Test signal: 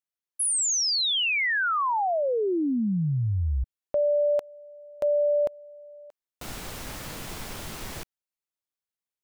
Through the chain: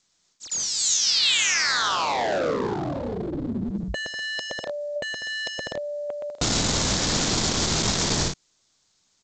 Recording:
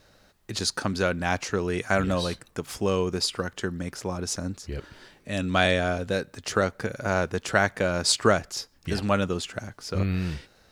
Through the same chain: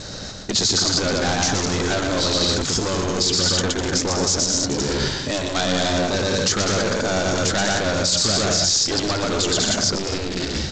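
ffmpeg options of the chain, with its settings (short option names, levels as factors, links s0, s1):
-filter_complex "[0:a]acrossover=split=4000[s0][s1];[s0]asoftclip=type=tanh:threshold=0.0708[s2];[s2][s1]amix=inputs=2:normalize=0,aecho=1:1:120|198|248.7|281.7|303.1:0.631|0.398|0.251|0.158|0.1,areverse,acompressor=threshold=0.0126:ratio=5:attack=23:release=93:knee=1:detection=rms,areverse,asoftclip=type=hard:threshold=0.0106,aexciter=amount=3.4:drive=5.1:freq=3700,equalizer=f=150:t=o:w=2.6:g=7.5,afftfilt=real='re*lt(hypot(re,im),0.0794)':imag='im*lt(hypot(re,im),0.0794)':win_size=1024:overlap=0.75,alimiter=level_in=20:limit=0.891:release=50:level=0:latency=1,volume=0.473" -ar 16000 -c:a g722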